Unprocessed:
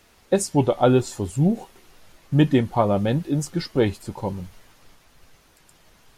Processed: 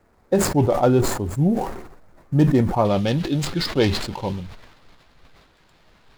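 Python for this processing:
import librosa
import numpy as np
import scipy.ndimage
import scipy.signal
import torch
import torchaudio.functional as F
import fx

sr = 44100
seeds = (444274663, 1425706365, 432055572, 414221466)

y = scipy.signal.medfilt(x, 15)
y = fx.peak_eq(y, sr, hz=3500.0, db=fx.steps((0.0, -4.5), (2.85, 13.0)), octaves=1.5)
y = fx.sustainer(y, sr, db_per_s=59.0)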